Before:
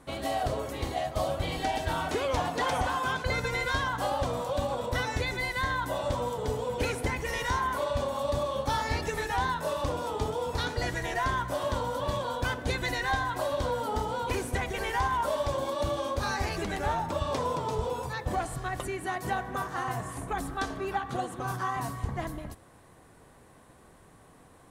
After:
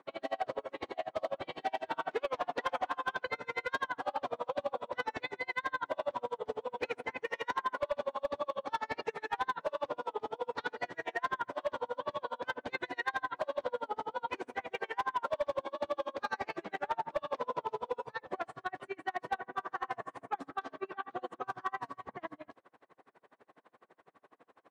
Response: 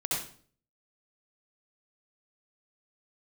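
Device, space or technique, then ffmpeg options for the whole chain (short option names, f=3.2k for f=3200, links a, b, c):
helicopter radio: -af "highpass=370,lowpass=2.7k,aeval=exprs='val(0)*pow(10,-36*(0.5-0.5*cos(2*PI*12*n/s))/20)':c=same,asoftclip=type=hard:threshold=-27dB,volume=2dB"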